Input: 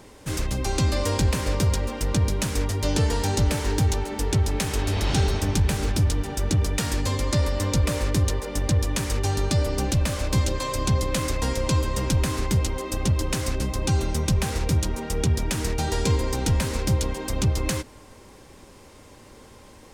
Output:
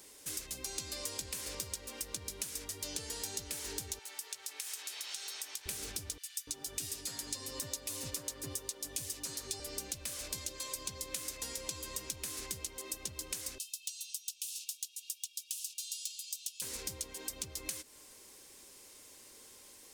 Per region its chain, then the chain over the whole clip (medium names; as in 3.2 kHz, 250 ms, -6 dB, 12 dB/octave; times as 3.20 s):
3.99–5.66 s: high-pass 920 Hz + compression 2.5:1, threshold -34 dBFS
6.18–9.60 s: high-pass 42 Hz + comb 7.4 ms, depth 59% + bands offset in time highs, lows 290 ms, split 1.9 kHz
13.58–16.62 s: steep high-pass 2.6 kHz 96 dB/octave + hard clipper -23.5 dBFS
whole clip: pre-emphasis filter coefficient 0.97; compression 3:1, threshold -41 dBFS; FFT filter 140 Hz 0 dB, 380 Hz +5 dB, 850 Hz -4 dB; trim +6 dB